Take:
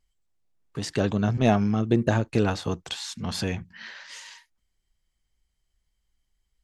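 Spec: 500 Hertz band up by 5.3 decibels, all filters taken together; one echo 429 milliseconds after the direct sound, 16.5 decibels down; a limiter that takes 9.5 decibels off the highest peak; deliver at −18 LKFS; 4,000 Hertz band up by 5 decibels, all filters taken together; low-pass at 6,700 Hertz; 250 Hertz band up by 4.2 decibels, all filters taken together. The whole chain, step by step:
low-pass filter 6,700 Hz
parametric band 250 Hz +4 dB
parametric band 500 Hz +5.5 dB
parametric band 4,000 Hz +6.5 dB
brickwall limiter −11.5 dBFS
single-tap delay 429 ms −16.5 dB
level +6.5 dB

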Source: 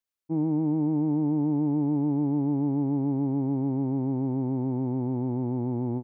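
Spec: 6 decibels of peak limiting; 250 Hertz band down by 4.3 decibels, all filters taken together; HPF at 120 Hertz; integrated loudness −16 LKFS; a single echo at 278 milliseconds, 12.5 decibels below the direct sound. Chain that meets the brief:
high-pass filter 120 Hz
parametric band 250 Hz −5 dB
brickwall limiter −26.5 dBFS
single-tap delay 278 ms −12.5 dB
level +19 dB

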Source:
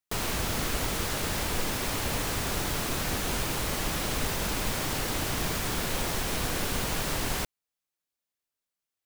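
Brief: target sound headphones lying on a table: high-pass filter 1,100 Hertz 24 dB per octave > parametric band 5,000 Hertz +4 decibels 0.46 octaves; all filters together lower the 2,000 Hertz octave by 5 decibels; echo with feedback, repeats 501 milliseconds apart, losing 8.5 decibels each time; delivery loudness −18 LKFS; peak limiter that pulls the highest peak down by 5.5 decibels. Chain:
parametric band 2,000 Hz −6.5 dB
brickwall limiter −22 dBFS
high-pass filter 1,100 Hz 24 dB per octave
parametric band 5,000 Hz +4 dB 0.46 octaves
repeating echo 501 ms, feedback 38%, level −8.5 dB
level +14.5 dB

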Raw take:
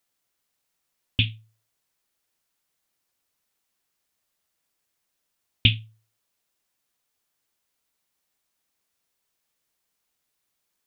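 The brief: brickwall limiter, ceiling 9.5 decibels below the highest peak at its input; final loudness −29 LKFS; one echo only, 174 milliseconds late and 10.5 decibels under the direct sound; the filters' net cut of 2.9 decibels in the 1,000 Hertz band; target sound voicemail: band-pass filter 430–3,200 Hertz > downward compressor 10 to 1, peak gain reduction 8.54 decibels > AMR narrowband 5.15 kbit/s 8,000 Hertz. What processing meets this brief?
parametric band 1,000 Hz −3.5 dB
brickwall limiter −14 dBFS
band-pass filter 430–3,200 Hz
single-tap delay 174 ms −10.5 dB
downward compressor 10 to 1, threshold −33 dBFS
level +18 dB
AMR narrowband 5.15 kbit/s 8,000 Hz

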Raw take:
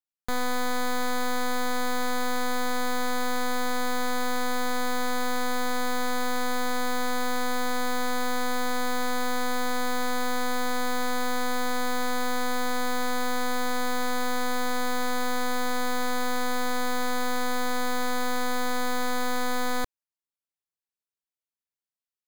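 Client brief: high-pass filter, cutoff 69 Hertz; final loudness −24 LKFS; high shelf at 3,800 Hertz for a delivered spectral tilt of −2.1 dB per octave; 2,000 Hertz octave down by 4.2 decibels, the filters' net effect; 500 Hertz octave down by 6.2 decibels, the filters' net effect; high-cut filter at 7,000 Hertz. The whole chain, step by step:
high-pass filter 69 Hz
low-pass filter 7,000 Hz
parametric band 500 Hz −6 dB
parametric band 2,000 Hz −3.5 dB
high-shelf EQ 3,800 Hz −8 dB
level +9 dB

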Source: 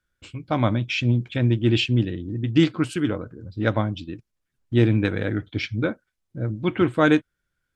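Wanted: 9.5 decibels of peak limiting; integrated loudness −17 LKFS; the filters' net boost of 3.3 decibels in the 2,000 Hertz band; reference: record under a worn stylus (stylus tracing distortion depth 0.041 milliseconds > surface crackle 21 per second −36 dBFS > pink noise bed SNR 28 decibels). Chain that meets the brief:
parametric band 2,000 Hz +4.5 dB
brickwall limiter −12.5 dBFS
stylus tracing distortion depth 0.041 ms
surface crackle 21 per second −36 dBFS
pink noise bed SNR 28 dB
level +8 dB

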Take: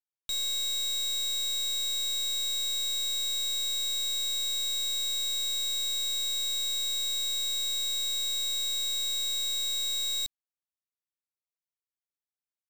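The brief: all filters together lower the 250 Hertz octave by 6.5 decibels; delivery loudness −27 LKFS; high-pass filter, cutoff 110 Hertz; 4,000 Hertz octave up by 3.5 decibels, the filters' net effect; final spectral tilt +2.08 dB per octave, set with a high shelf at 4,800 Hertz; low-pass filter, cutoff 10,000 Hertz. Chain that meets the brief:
high-pass filter 110 Hz
low-pass filter 10,000 Hz
parametric band 250 Hz −8.5 dB
parametric band 4,000 Hz +6 dB
high-shelf EQ 4,800 Hz −6 dB
level −1.5 dB

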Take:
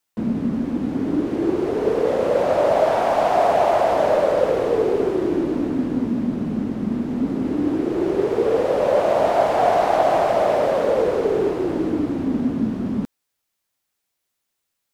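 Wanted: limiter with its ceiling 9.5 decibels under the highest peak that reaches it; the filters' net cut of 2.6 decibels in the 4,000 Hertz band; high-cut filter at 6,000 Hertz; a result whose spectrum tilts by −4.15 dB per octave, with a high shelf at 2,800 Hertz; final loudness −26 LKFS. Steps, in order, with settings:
low-pass filter 6,000 Hz
high-shelf EQ 2,800 Hz +5 dB
parametric band 4,000 Hz −7 dB
level −4 dB
brickwall limiter −17 dBFS

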